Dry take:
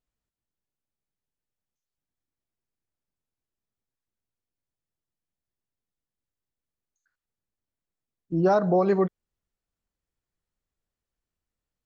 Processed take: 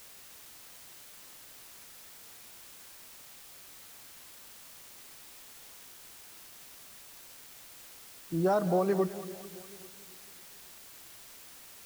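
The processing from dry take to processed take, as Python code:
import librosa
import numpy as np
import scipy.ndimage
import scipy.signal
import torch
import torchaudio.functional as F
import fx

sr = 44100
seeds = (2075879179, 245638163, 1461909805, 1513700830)

y = fx.dmg_noise_colour(x, sr, seeds[0], colour='white', level_db=-45.0)
y = fx.echo_split(y, sr, split_hz=430.0, low_ms=276, high_ms=207, feedback_pct=52, wet_db=-14.0)
y = np.where(np.abs(y) >= 10.0 ** (-46.0 / 20.0), y, 0.0)
y = F.gain(torch.from_numpy(y), -6.0).numpy()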